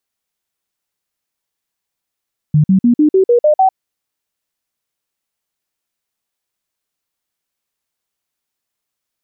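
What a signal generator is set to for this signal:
stepped sweep 151 Hz up, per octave 3, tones 8, 0.10 s, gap 0.05 s −6.5 dBFS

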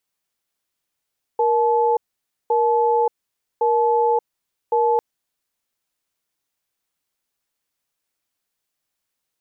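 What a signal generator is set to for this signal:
tone pair in a cadence 470 Hz, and 864 Hz, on 0.58 s, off 0.53 s, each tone −17.5 dBFS 3.60 s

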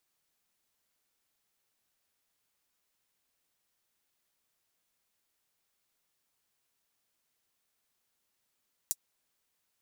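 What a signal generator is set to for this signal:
closed synth hi-hat, high-pass 6,800 Hz, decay 0.05 s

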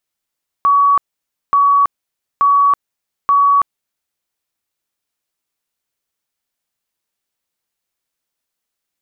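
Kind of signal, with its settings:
tone bursts 1,130 Hz, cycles 370, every 0.88 s, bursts 4, −8 dBFS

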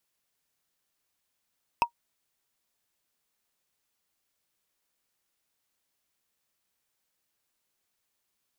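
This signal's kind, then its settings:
struck wood, lowest mode 944 Hz, decay 0.09 s, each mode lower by 6 dB, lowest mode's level −14 dB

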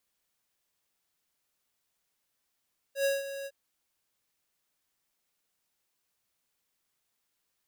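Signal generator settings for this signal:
note with an ADSR envelope square 552 Hz, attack 100 ms, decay 175 ms, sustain −12.5 dB, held 0.51 s, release 48 ms −26 dBFS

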